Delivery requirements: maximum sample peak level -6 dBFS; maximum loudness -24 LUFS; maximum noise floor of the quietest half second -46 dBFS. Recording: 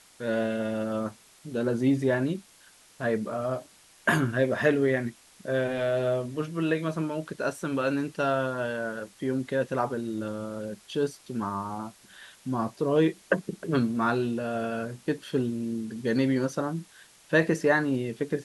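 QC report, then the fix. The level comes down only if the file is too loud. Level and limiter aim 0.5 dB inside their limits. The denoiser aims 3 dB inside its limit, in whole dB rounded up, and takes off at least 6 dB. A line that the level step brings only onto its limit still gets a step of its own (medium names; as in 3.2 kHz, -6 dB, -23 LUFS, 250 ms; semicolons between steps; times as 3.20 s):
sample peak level -8.5 dBFS: pass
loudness -28.5 LUFS: pass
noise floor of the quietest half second -56 dBFS: pass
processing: none needed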